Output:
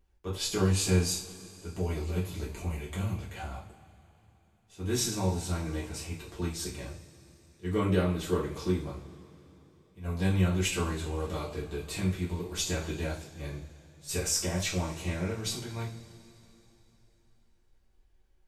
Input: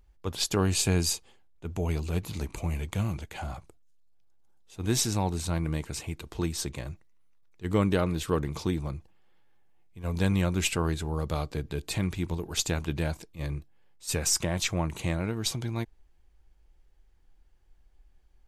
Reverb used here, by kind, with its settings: two-slope reverb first 0.38 s, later 3.5 s, from -22 dB, DRR -7.5 dB; trim -10.5 dB

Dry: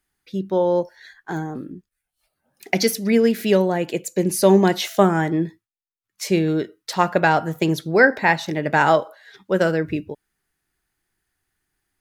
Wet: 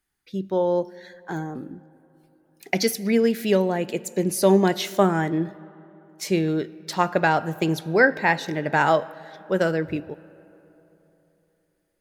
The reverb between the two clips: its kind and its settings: algorithmic reverb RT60 3.4 s, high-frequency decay 0.5×, pre-delay 40 ms, DRR 20 dB; trim -3 dB

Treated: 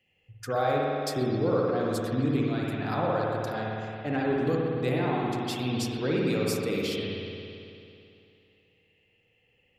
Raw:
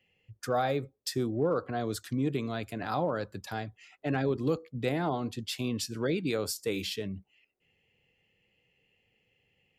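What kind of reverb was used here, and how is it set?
spring tank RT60 2.7 s, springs 55 ms, chirp 75 ms, DRR -3.5 dB; trim -1 dB

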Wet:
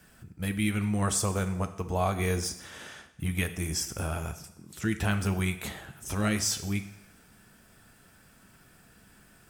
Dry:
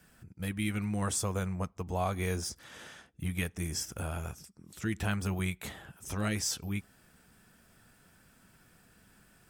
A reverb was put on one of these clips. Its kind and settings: two-slope reverb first 0.82 s, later 2.2 s, from -23 dB, DRR 9 dB; trim +4 dB

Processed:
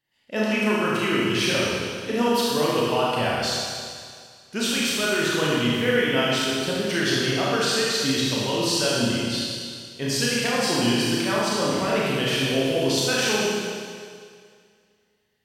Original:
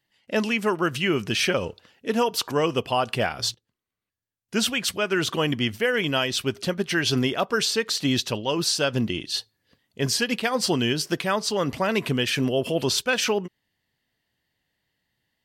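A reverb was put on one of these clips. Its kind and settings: Schroeder reverb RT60 2.1 s, combs from 26 ms, DRR -6.5 dB; trim -5.5 dB

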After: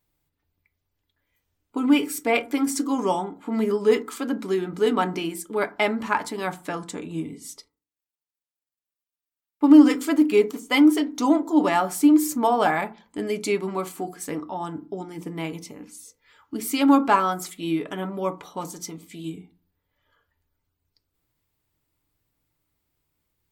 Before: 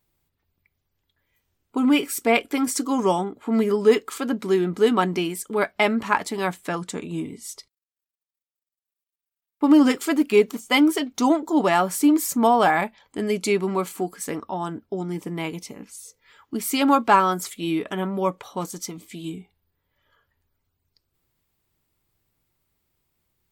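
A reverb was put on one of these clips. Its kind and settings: FDN reverb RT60 0.34 s, low-frequency decay 1.45×, high-frequency decay 0.4×, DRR 8.5 dB; trim -3 dB

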